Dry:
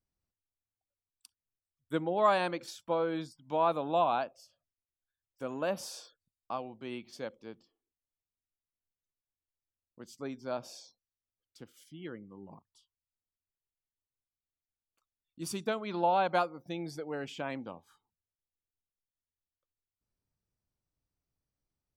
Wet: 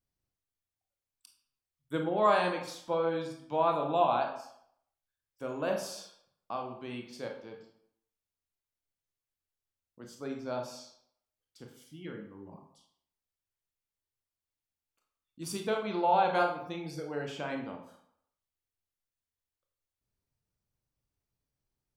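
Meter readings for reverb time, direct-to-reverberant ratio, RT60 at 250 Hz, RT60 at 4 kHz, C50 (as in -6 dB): 0.70 s, 1.5 dB, 0.60 s, 0.50 s, 6.0 dB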